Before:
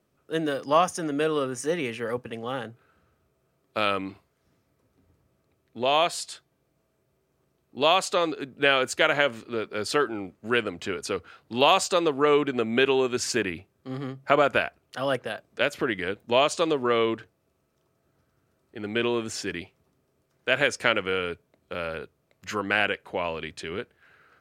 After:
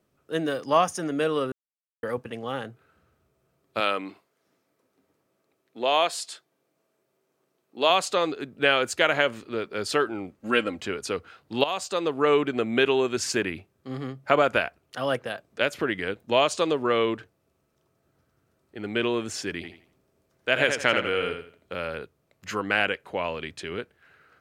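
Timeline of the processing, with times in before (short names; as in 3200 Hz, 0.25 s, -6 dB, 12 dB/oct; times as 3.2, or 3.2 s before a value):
1.52–2.03 mute
3.8–7.9 HPF 260 Hz
10.4–10.81 comb 3.7 ms, depth 69%
11.64–12.28 fade in, from -13 dB
19.55–21.74 feedback echo 83 ms, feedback 28%, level -6.5 dB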